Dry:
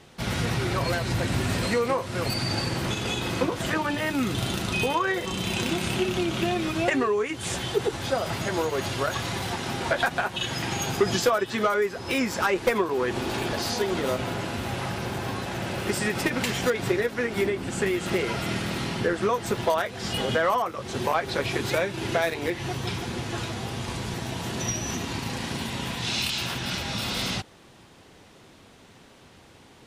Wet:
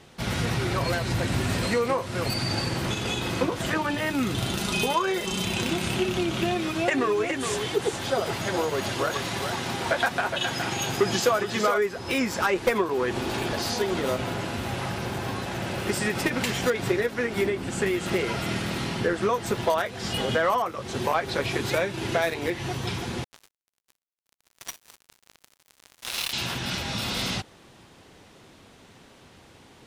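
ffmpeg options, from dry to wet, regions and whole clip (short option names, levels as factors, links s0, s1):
-filter_complex "[0:a]asettb=1/sr,asplit=3[s0][s1][s2];[s0]atrim=end=4.584[s3];[s1]atrim=start=4.58:end=5.45,asetpts=PTS-STARTPTS,afade=t=in:d=0.004:c=qsin,afade=t=out:st=0.866:d=0.004:c=qsin,bass=f=250:g=-2,treble=f=4000:g=4,bandreject=f=1900:w=23,aecho=1:1:4.9:0.5,atrim=end_sample=38367[s4];[s2]atrim=start=5.446[s5];[s3][s4]acrossfade=d=0.004:c1=hsin:c2=qsin[s6];[s6][s5]acrossfade=d=0.004:c1=qsin:c2=hsin,asettb=1/sr,asplit=3[s7][s8][s9];[s7]atrim=end=6.564[s10];[s8]atrim=start=6.56:end=11.78,asetpts=PTS-STARTPTS,afade=t=in:d=0.004:c=qsin,afade=t=out:st=5.216:d=0.004:c=qsin,lowshelf=f=75:g=-10.5,aecho=1:1:416:0.447,atrim=end_sample=230202[s11];[s9]atrim=start=11.776[s12];[s10][s11]acrossfade=d=0.004:c1=hsin:c2=qsin[s13];[s13][s12]acrossfade=d=0.004:c1=qsin:c2=hsin,asettb=1/sr,asplit=3[s14][s15][s16];[s14]atrim=end=23.244[s17];[s15]atrim=start=23.24:end=26.33,asetpts=PTS-STARTPTS,afade=t=in:d=0.004:c=qsin,afade=t=out:st=3.086:d=0.004:c=qsin,highpass=750,equalizer=f=8200:t=o:w=0.21:g=-14,acrusher=bits=3:mix=0:aa=0.5[s18];[s16]atrim=start=26.326[s19];[s17][s18]acrossfade=d=0.004:c1=hsin:c2=qsin[s20];[s20][s19]acrossfade=d=0.004:c1=qsin:c2=hsin"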